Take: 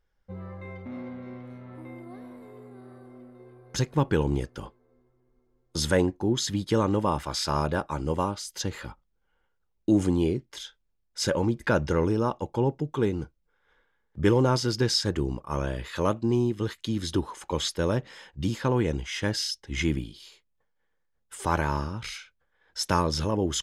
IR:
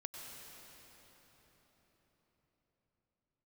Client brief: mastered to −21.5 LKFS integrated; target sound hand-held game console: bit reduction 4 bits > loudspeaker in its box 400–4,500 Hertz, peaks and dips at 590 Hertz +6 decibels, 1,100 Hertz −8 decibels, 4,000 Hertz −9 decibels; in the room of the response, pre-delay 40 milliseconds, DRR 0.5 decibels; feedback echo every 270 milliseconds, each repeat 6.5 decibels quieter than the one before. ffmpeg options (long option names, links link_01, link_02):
-filter_complex "[0:a]aecho=1:1:270|540|810|1080|1350|1620:0.473|0.222|0.105|0.0491|0.0231|0.0109,asplit=2[link_01][link_02];[1:a]atrim=start_sample=2205,adelay=40[link_03];[link_02][link_03]afir=irnorm=-1:irlink=0,volume=1.5dB[link_04];[link_01][link_04]amix=inputs=2:normalize=0,acrusher=bits=3:mix=0:aa=0.000001,highpass=400,equalizer=frequency=590:width_type=q:width=4:gain=6,equalizer=frequency=1100:width_type=q:width=4:gain=-8,equalizer=frequency=4000:width_type=q:width=4:gain=-9,lowpass=frequency=4500:width=0.5412,lowpass=frequency=4500:width=1.3066,volume=4.5dB"